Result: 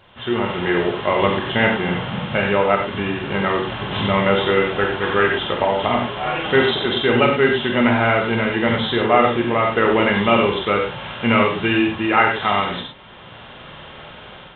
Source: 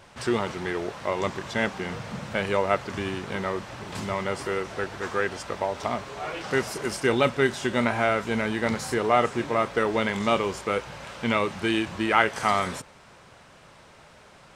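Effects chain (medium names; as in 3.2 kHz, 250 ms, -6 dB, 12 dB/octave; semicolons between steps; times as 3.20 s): knee-point frequency compression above 2.7 kHz 4:1; level rider; gated-style reverb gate 130 ms flat, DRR 0.5 dB; trim -1.5 dB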